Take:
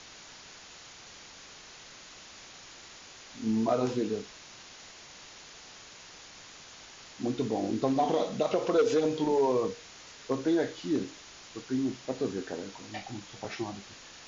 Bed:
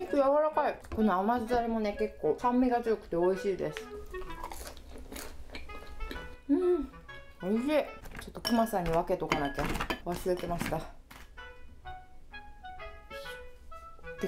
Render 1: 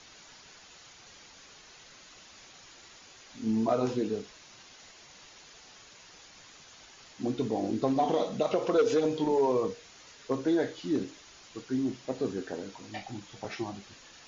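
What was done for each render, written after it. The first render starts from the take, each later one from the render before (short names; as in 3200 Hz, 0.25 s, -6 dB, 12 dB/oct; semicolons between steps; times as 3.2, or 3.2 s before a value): denoiser 6 dB, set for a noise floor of -50 dBFS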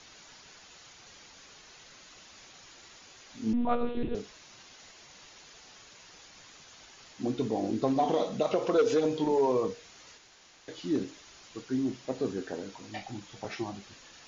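3.53–4.15 monotone LPC vocoder at 8 kHz 240 Hz; 10.18–10.68 room tone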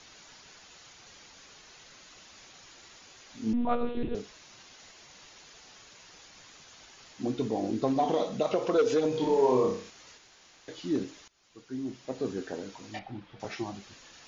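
9.09–9.9 flutter echo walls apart 5.4 m, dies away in 0.45 s; 11.28–12.37 fade in, from -22 dB; 12.99–13.4 air absorption 320 m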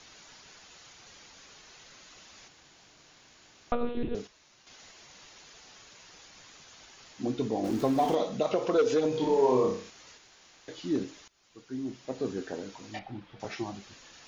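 2.48–3.72 room tone; 4.27–4.67 resonator 72 Hz, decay 1 s, mix 70%; 7.64–8.15 zero-crossing step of -37 dBFS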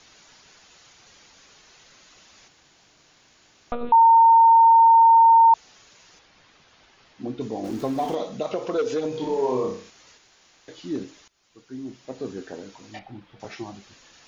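3.92–5.54 bleep 913 Hz -10 dBFS; 6.19–7.41 air absorption 150 m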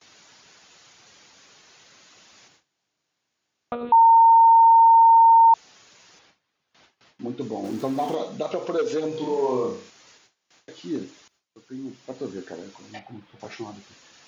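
gate with hold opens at -45 dBFS; HPF 97 Hz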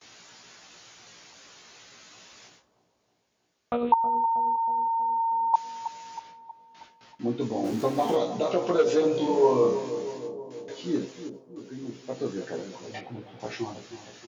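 doubler 17 ms -2.5 dB; on a send: analogue delay 0.318 s, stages 2048, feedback 61%, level -11 dB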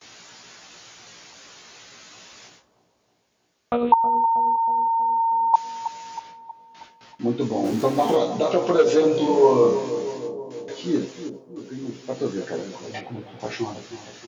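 gain +5 dB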